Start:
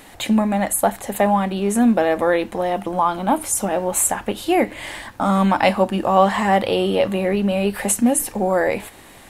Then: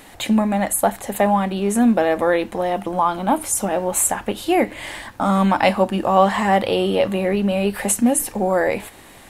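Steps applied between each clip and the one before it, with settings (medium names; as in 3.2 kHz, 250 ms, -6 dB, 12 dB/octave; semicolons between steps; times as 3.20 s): no audible change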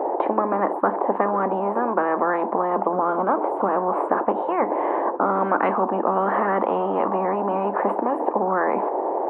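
elliptic band-pass 370–880 Hz, stop band 80 dB; spectrum-flattening compressor 10:1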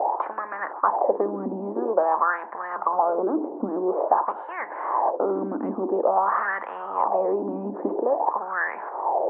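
wah-wah 0.49 Hz 250–1800 Hz, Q 4.5; trim +6.5 dB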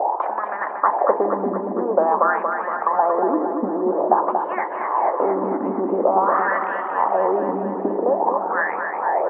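feedback delay 233 ms, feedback 59%, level -6 dB; trim +3 dB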